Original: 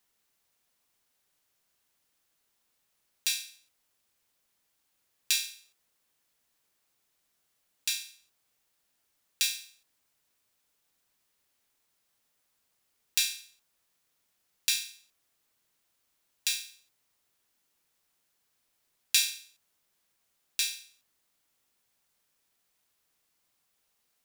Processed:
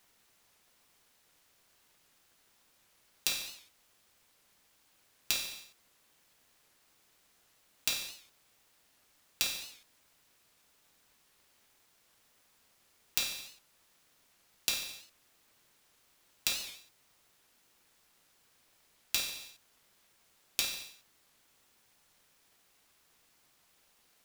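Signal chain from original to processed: square wave that keeps the level; compression 16:1, threshold -33 dBFS, peak gain reduction 17.5 dB; warped record 78 rpm, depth 160 cents; trim +4.5 dB

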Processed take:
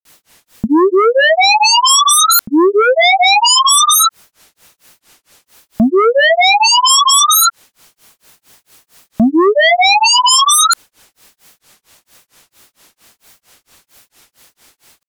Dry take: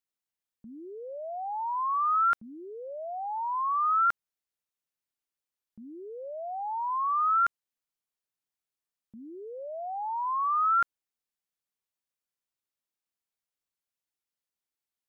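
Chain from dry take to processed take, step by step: granulator 230 ms, grains 4.4 per s, pitch spread up and down by 0 st; compression 2:1, threshold -37 dBFS, peak gain reduction 8.5 dB; sine folder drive 17 dB, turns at -28 dBFS; loudness maximiser +32 dB; trim -5 dB

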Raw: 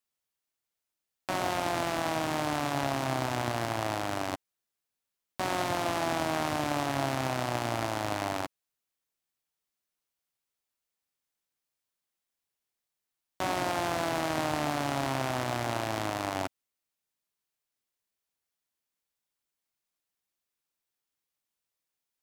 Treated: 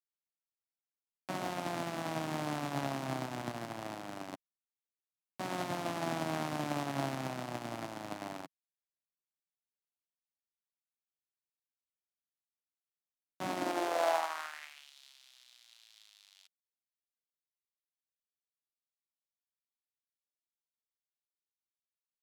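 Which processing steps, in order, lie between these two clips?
high-pass sweep 170 Hz -> 3.7 kHz, 13.44–14.93 s; upward expansion 2.5:1, over -39 dBFS; trim -1.5 dB

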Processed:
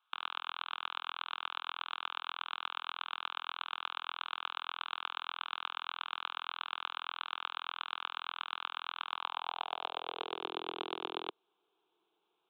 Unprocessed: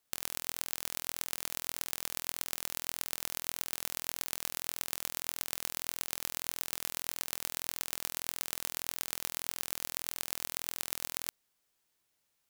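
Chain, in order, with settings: high-pass sweep 1.3 kHz -> 360 Hz, 8.99–10.51 s; resampled via 8 kHz; static phaser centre 380 Hz, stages 8; trim +8.5 dB

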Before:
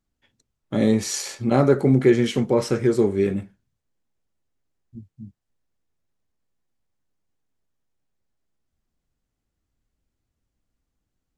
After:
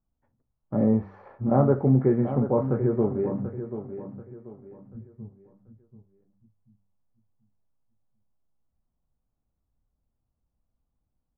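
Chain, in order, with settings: low-pass 1.1 kHz 24 dB/octave; peaking EQ 360 Hz -7 dB 0.93 oct; de-hum 97.78 Hz, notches 3; on a send: feedback delay 736 ms, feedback 33%, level -10.5 dB

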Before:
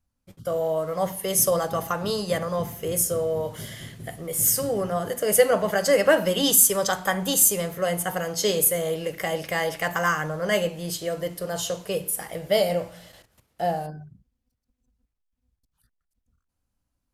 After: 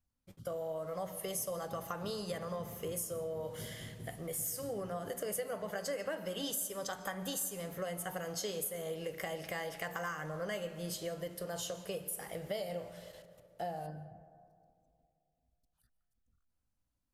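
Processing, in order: compression 5:1, threshold -29 dBFS, peak gain reduction 15.5 dB; on a send: reverberation RT60 2.4 s, pre-delay 105 ms, DRR 14 dB; on the sum: trim -7.5 dB

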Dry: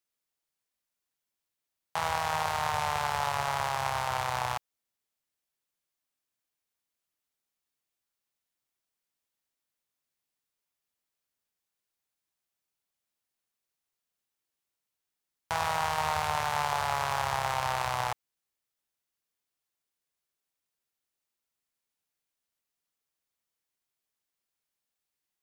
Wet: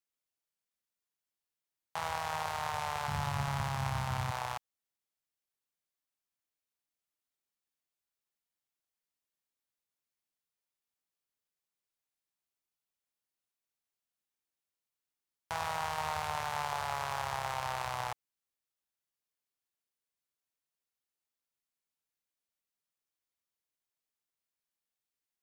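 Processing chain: 3.08–4.31 s: resonant low shelf 310 Hz +11.5 dB, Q 1.5; trim -6 dB

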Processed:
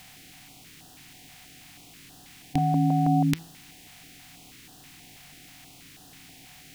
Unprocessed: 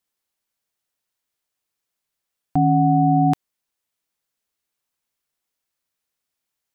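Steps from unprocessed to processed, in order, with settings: spectral levelling over time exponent 0.4; resonant high shelf 1.6 kHz +9 dB, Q 1.5; de-hum 164.4 Hz, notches 36; step-sequenced notch 6.2 Hz 330–2200 Hz; trim -4 dB

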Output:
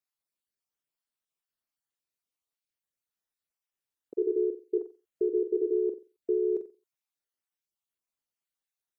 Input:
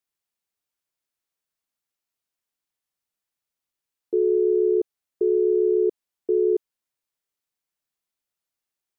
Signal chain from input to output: random holes in the spectrogram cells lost 32%; flutter echo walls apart 7.7 m, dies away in 0.31 s; trim -5 dB

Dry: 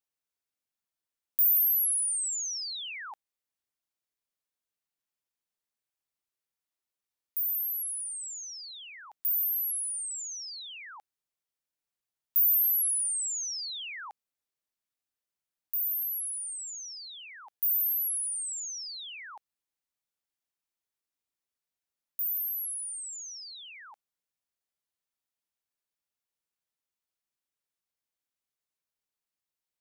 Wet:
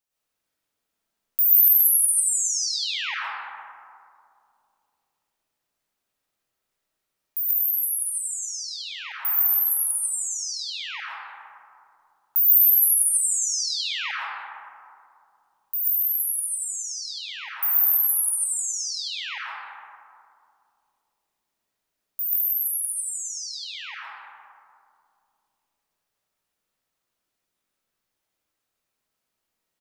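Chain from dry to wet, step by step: frequency-shifting echo 185 ms, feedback 31%, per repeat -37 Hz, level -15.5 dB; reverberation RT60 2.5 s, pre-delay 70 ms, DRR -8.5 dB; trim +3.5 dB

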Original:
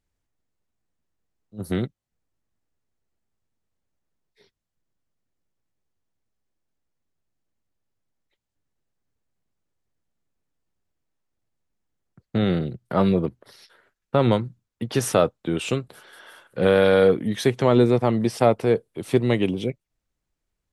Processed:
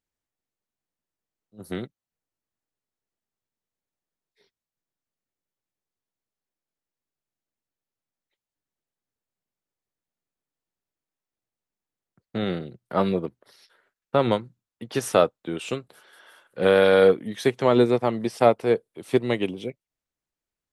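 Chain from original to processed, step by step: bass shelf 150 Hz -12 dB; upward expansion 1.5:1, over -30 dBFS; trim +2.5 dB

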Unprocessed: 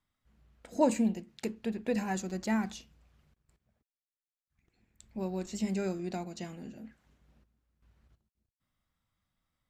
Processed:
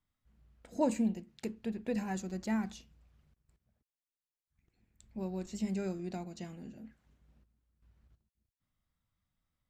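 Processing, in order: bass shelf 220 Hz +6 dB; trim -5.5 dB

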